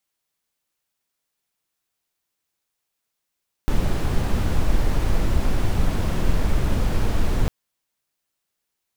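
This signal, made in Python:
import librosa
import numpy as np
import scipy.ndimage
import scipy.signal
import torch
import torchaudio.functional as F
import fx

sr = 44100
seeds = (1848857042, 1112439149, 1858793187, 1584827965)

y = fx.noise_colour(sr, seeds[0], length_s=3.8, colour='brown', level_db=-18.0)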